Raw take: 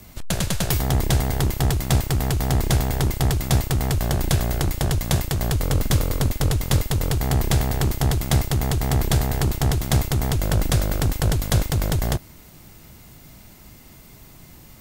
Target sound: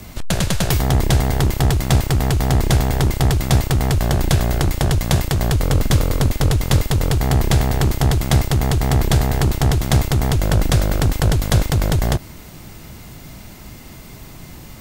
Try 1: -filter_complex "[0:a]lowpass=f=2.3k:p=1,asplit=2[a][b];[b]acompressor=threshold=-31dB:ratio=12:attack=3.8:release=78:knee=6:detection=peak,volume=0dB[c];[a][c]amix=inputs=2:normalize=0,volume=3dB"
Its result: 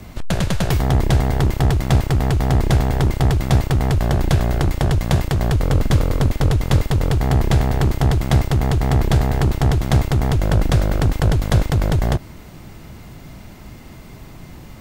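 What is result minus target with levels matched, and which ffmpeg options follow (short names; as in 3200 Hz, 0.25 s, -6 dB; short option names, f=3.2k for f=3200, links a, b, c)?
8000 Hz band -7.0 dB
-filter_complex "[0:a]lowpass=f=7.5k:p=1,asplit=2[a][b];[b]acompressor=threshold=-31dB:ratio=12:attack=3.8:release=78:knee=6:detection=peak,volume=0dB[c];[a][c]amix=inputs=2:normalize=0,volume=3dB"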